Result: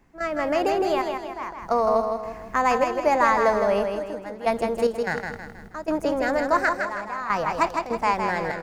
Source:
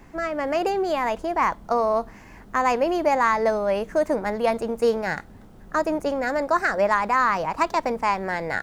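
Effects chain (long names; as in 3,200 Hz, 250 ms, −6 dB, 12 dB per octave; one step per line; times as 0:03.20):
gate pattern ".xxxx...xx.xxx" 74 BPM −12 dB
repeating echo 160 ms, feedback 44%, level −5.5 dB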